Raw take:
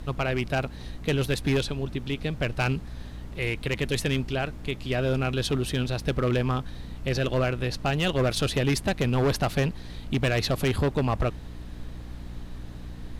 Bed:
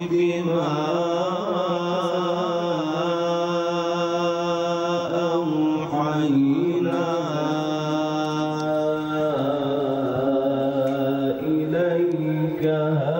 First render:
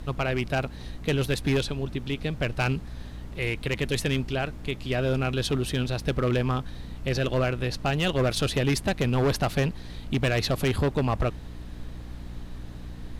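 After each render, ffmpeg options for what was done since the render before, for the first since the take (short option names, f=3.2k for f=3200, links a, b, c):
-af anull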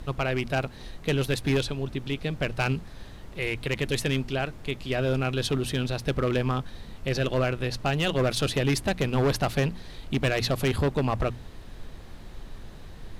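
-af "bandreject=f=60:t=h:w=6,bandreject=f=120:t=h:w=6,bandreject=f=180:t=h:w=6,bandreject=f=240:t=h:w=6,bandreject=f=300:t=h:w=6"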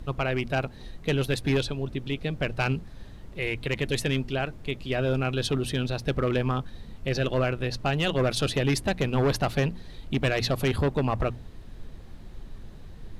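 -af "afftdn=nr=6:nf=-44"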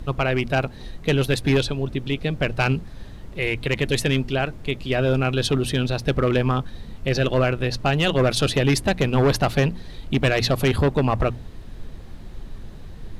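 -af "volume=5.5dB"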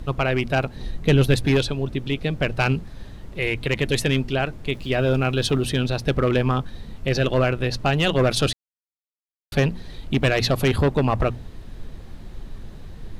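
-filter_complex "[0:a]asettb=1/sr,asplit=3[a][b][c];[a]atrim=end=0.754[d];[b]atrim=start=0.75:end=1.45,asetpts=PTS-STARTPTS,afade=t=in:d=0.004:c=qsin,afade=t=out:st=0.696:d=0.004:c=qsin,lowshelf=f=270:g=6.5[e];[c]atrim=start=1.446[f];[d][e]acrossfade=d=0.004:c1=hsin:c2=qsin[g];[g][f]acrossfade=d=0.004:c1=qsin:c2=hsin,asettb=1/sr,asplit=3[h][i][j];[h]atrim=end=4.724[k];[i]atrim=start=4.72:end=5.67,asetpts=PTS-STARTPTS,afade=t=in:d=0.004:c=qsin,afade=t=out:st=0.946:d=0.004:c=qsin,aeval=exprs='val(0)*gte(abs(val(0)),0.00473)':c=same[l];[j]atrim=start=5.666[m];[k][l]acrossfade=d=0.004:c1=hsin:c2=qsin[n];[n][m]acrossfade=d=0.004:c1=qsin:c2=hsin,asplit=3[o][p][q];[o]atrim=end=8.53,asetpts=PTS-STARTPTS,afade=t=out:st=8.526:d=0.004:c=hsin[r];[p]atrim=start=8.53:end=9.52,asetpts=PTS-STARTPTS,volume=0[s];[q]atrim=start=9.52,asetpts=PTS-STARTPTS,afade=t=in:d=0.004:c=hsin[t];[r][s][t]concat=n=3:v=0:a=1"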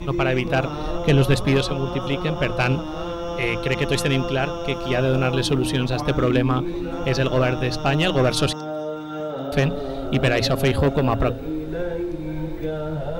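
-filter_complex "[1:a]volume=-6dB[a];[0:a][a]amix=inputs=2:normalize=0"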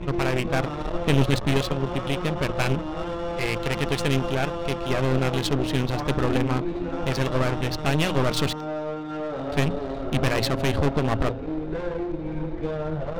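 -af "aeval=exprs='clip(val(0),-1,0.0335)':c=same,adynamicsmooth=sensitivity=6:basefreq=1.8k"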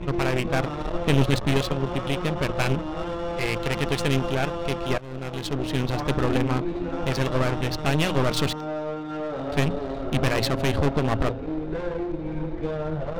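-filter_complex "[0:a]asplit=2[a][b];[a]atrim=end=4.98,asetpts=PTS-STARTPTS,afade=t=out:st=4.976:d=0.004:c=hsin:silence=0.0841395[c];[b]atrim=start=4.98,asetpts=PTS-STARTPTS,afade=t=in:d=0.93:silence=0.0841395[d];[c][d]concat=n=2:v=0:a=1"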